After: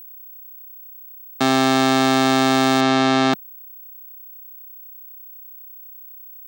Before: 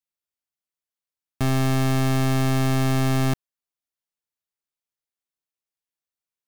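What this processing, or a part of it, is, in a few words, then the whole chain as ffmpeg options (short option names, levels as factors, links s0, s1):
old television with a line whistle: -filter_complex "[0:a]highpass=f=210:w=0.5412,highpass=f=210:w=1.3066,equalizer=f=800:t=q:w=4:g=4,equalizer=f=1400:t=q:w=4:g=6,equalizer=f=3800:t=q:w=4:g=8,lowpass=f=8700:w=0.5412,lowpass=f=8700:w=1.3066,aeval=exprs='val(0)+0.00562*sin(2*PI*15734*n/s)':c=same,asplit=3[s0][s1][s2];[s0]afade=t=out:st=2.8:d=0.02[s3];[s1]lowpass=5700,afade=t=in:st=2.8:d=0.02,afade=t=out:st=3.32:d=0.02[s4];[s2]afade=t=in:st=3.32:d=0.02[s5];[s3][s4][s5]amix=inputs=3:normalize=0,volume=2.37"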